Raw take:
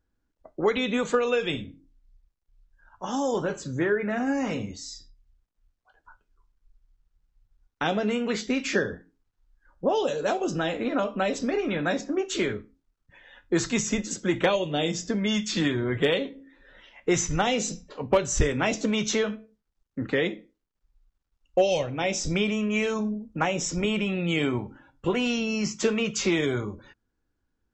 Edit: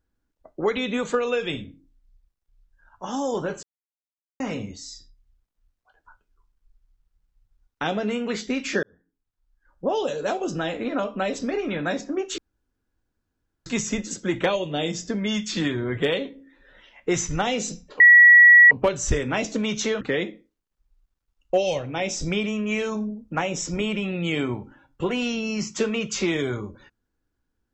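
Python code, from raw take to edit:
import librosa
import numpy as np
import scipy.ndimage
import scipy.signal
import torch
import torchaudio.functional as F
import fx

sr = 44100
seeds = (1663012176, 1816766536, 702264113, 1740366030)

y = fx.edit(x, sr, fx.silence(start_s=3.63, length_s=0.77),
    fx.fade_in_span(start_s=8.83, length_s=1.1),
    fx.room_tone_fill(start_s=12.38, length_s=1.28),
    fx.insert_tone(at_s=18.0, length_s=0.71, hz=1930.0, db=-7.5),
    fx.cut(start_s=19.3, length_s=0.75), tone=tone)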